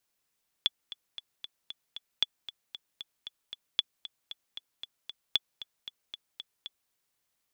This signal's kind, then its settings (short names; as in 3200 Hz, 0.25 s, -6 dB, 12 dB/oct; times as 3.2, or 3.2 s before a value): metronome 230 bpm, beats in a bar 6, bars 4, 3430 Hz, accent 15.5 dB -11 dBFS